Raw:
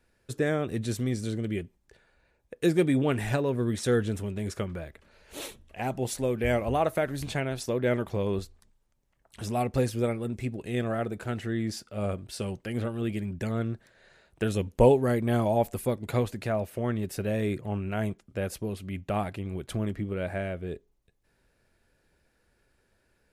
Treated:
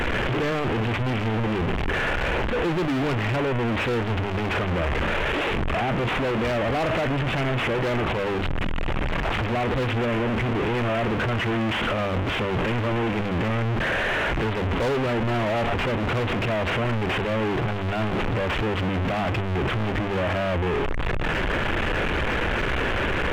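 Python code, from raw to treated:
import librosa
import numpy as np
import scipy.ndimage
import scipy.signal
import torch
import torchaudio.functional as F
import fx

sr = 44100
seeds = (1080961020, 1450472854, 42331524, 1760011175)

y = fx.delta_mod(x, sr, bps=16000, step_db=-20.5)
y = fx.hum_notches(y, sr, base_hz=50, count=5)
y = np.clip(10.0 ** (25.0 / 20.0) * y, -1.0, 1.0) / 10.0 ** (25.0 / 20.0)
y = y * librosa.db_to_amplitude(3.5)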